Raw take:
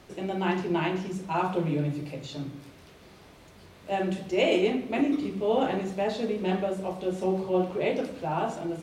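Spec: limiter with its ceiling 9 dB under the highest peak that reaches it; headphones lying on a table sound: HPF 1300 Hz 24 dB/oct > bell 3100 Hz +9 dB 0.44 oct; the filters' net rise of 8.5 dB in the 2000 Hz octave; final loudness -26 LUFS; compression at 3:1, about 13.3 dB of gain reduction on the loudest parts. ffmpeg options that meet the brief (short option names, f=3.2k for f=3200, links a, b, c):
-af "equalizer=f=2k:t=o:g=8.5,acompressor=threshold=-37dB:ratio=3,alimiter=level_in=7dB:limit=-24dB:level=0:latency=1,volume=-7dB,highpass=f=1.3k:w=0.5412,highpass=f=1.3k:w=1.3066,equalizer=f=3.1k:t=o:w=0.44:g=9,volume=18.5dB"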